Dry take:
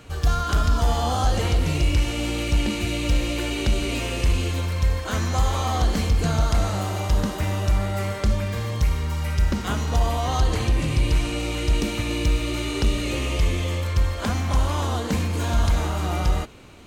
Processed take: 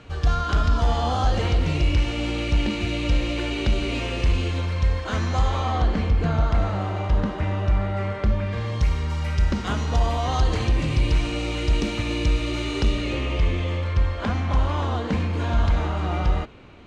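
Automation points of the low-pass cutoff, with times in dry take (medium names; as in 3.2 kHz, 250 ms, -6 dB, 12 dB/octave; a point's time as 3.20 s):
5.38 s 4.5 kHz
5.97 s 2.5 kHz
8.38 s 2.5 kHz
8.87 s 5.7 kHz
12.81 s 5.7 kHz
13.25 s 3.2 kHz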